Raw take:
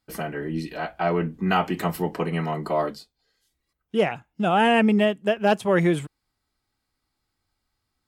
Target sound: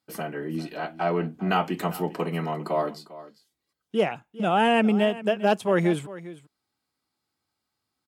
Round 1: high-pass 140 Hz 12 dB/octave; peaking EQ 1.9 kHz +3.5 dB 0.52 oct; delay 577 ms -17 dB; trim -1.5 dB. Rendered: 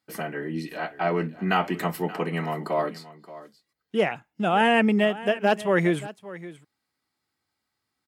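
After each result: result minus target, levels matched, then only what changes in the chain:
echo 177 ms late; 2 kHz band +3.5 dB
change: delay 400 ms -17 dB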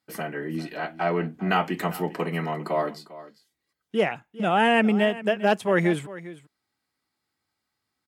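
2 kHz band +3.5 dB
change: peaking EQ 1.9 kHz -3 dB 0.52 oct

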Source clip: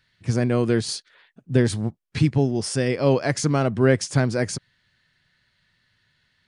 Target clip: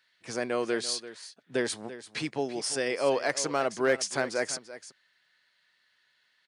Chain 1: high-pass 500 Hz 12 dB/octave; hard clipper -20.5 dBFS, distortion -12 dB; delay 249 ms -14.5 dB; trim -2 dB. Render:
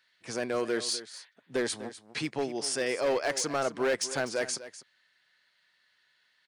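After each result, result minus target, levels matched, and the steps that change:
hard clipper: distortion +15 dB; echo 90 ms early
change: hard clipper -13.5 dBFS, distortion -27 dB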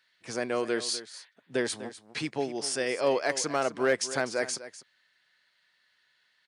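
echo 90 ms early
change: delay 339 ms -14.5 dB

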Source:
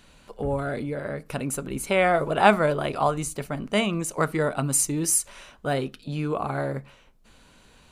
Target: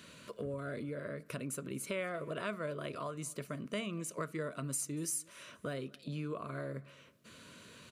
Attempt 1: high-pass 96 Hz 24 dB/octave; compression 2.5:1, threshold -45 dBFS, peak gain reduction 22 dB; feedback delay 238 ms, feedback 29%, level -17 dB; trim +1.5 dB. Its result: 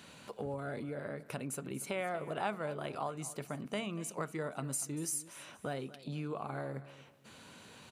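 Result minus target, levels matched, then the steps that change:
echo-to-direct +8.5 dB; 1 kHz band +4.5 dB
add after compression: Butterworth band-stop 810 Hz, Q 2.6; change: feedback delay 238 ms, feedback 29%, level -25.5 dB

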